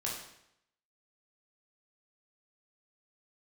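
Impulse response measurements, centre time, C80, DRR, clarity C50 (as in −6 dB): 46 ms, 6.5 dB, −4.0 dB, 3.0 dB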